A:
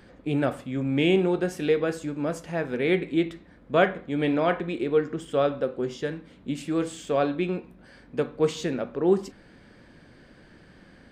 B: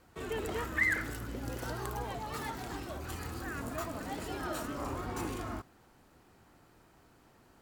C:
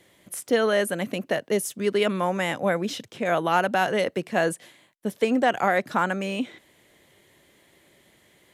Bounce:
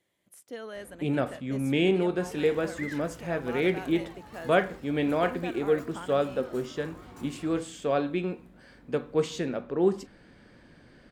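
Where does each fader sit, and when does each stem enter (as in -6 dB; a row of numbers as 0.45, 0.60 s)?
-2.5, -10.5, -18.5 dB; 0.75, 2.00, 0.00 s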